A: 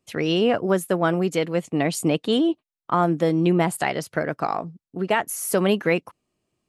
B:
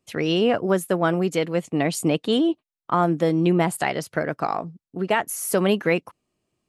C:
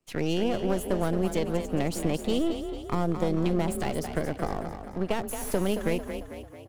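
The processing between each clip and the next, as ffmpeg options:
-af anull
-filter_complex "[0:a]aeval=exprs='if(lt(val(0),0),0.251*val(0),val(0))':c=same,acrossover=split=670|4800[a][b][c];[a]acompressor=threshold=-22dB:ratio=4[d];[b]acompressor=threshold=-39dB:ratio=4[e];[c]acompressor=threshold=-37dB:ratio=4[f];[d][e][f]amix=inputs=3:normalize=0,asplit=7[g][h][i][j][k][l][m];[h]adelay=223,afreqshift=32,volume=-8.5dB[n];[i]adelay=446,afreqshift=64,volume=-14.2dB[o];[j]adelay=669,afreqshift=96,volume=-19.9dB[p];[k]adelay=892,afreqshift=128,volume=-25.5dB[q];[l]adelay=1115,afreqshift=160,volume=-31.2dB[r];[m]adelay=1338,afreqshift=192,volume=-36.9dB[s];[g][n][o][p][q][r][s]amix=inputs=7:normalize=0"

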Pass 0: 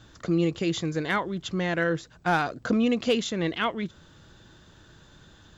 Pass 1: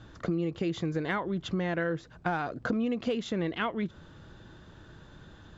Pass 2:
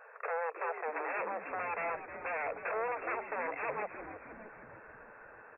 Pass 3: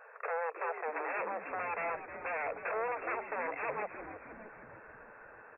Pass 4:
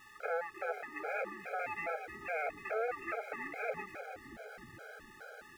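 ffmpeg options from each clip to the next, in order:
-af "lowpass=f=1.8k:p=1,acompressor=threshold=-30dB:ratio=6,volume=3dB"
-filter_complex "[0:a]aeval=exprs='0.0211*(abs(mod(val(0)/0.0211+3,4)-2)-1)':c=same,afftfilt=real='re*between(b*sr/4096,410,2700)':imag='im*between(b*sr/4096,410,2700)':win_size=4096:overlap=0.75,asplit=8[a][b][c][d][e][f][g][h];[b]adelay=312,afreqshift=-99,volume=-11dB[i];[c]adelay=624,afreqshift=-198,volume=-15.7dB[j];[d]adelay=936,afreqshift=-297,volume=-20.5dB[k];[e]adelay=1248,afreqshift=-396,volume=-25.2dB[l];[f]adelay=1560,afreqshift=-495,volume=-29.9dB[m];[g]adelay=1872,afreqshift=-594,volume=-34.7dB[n];[h]adelay=2184,afreqshift=-693,volume=-39.4dB[o];[a][i][j][k][l][m][n][o]amix=inputs=8:normalize=0,volume=4.5dB"
-af anull
-af "aeval=exprs='val(0)+0.5*0.00266*sgn(val(0))':c=same,asuperstop=centerf=1000:order=8:qfactor=3.3,afftfilt=real='re*gt(sin(2*PI*2.4*pts/sr)*(1-2*mod(floor(b*sr/1024/420),2)),0)':imag='im*gt(sin(2*PI*2.4*pts/sr)*(1-2*mod(floor(b*sr/1024/420),2)),0)':win_size=1024:overlap=0.75,volume=1dB"

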